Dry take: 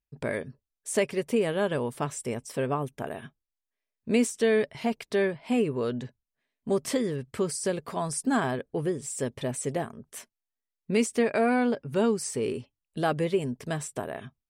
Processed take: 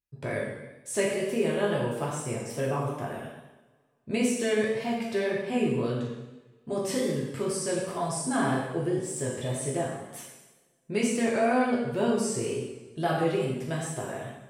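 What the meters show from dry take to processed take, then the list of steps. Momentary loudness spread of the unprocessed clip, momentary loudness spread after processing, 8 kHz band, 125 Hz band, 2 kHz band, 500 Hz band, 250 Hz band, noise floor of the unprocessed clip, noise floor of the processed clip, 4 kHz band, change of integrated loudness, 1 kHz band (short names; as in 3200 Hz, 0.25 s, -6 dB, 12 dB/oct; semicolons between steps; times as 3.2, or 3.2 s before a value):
13 LU, 11 LU, +0.5 dB, +2.0 dB, 0.0 dB, -0.5 dB, -0.5 dB, under -85 dBFS, -64 dBFS, +1.0 dB, -0.5 dB, +0.5 dB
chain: two-slope reverb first 1 s, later 2.6 s, from -25 dB, DRR -4.5 dB; wow and flutter 38 cents; gain -5.5 dB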